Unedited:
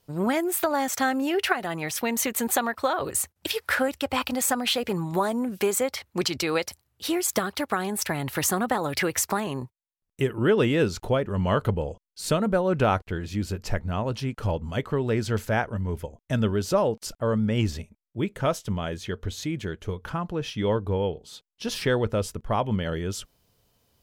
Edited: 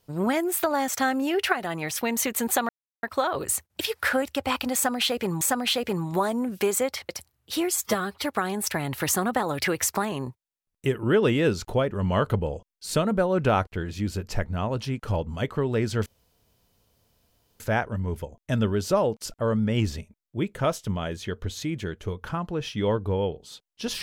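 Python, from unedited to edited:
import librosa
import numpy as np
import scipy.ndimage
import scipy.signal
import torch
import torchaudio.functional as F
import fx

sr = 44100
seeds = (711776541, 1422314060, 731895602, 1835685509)

y = fx.edit(x, sr, fx.insert_silence(at_s=2.69, length_s=0.34),
    fx.repeat(start_s=4.41, length_s=0.66, count=2),
    fx.cut(start_s=6.09, length_s=0.52),
    fx.stretch_span(start_s=7.25, length_s=0.34, factor=1.5),
    fx.insert_room_tone(at_s=15.41, length_s=1.54), tone=tone)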